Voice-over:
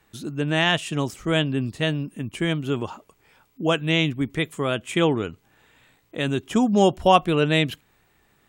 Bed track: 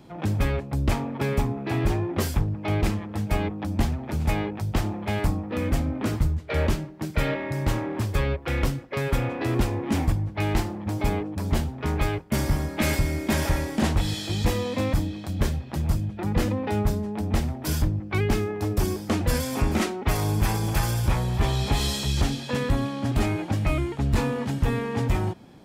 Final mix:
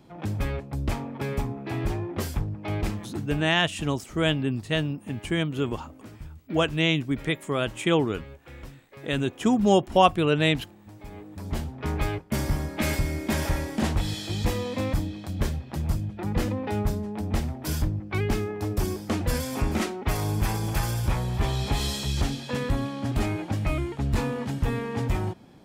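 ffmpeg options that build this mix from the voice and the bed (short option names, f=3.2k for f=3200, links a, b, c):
-filter_complex "[0:a]adelay=2900,volume=-2dB[a];[1:a]volume=11.5dB,afade=t=out:st=3.03:d=0.47:silence=0.199526,afade=t=in:st=11.09:d=0.78:silence=0.158489[b];[a][b]amix=inputs=2:normalize=0"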